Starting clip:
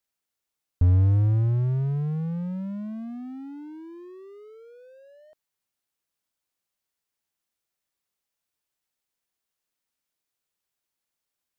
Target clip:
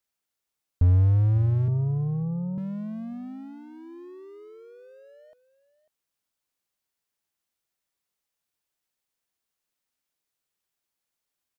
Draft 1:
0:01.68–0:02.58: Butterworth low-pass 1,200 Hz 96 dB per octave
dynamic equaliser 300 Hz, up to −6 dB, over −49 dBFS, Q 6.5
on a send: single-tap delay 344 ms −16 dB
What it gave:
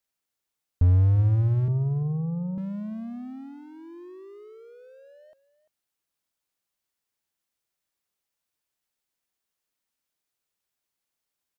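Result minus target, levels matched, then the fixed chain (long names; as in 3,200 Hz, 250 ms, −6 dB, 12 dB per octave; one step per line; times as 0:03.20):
echo 202 ms early
0:01.68–0:02.58: Butterworth low-pass 1,200 Hz 96 dB per octave
dynamic equaliser 300 Hz, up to −6 dB, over −49 dBFS, Q 6.5
on a send: single-tap delay 546 ms −16 dB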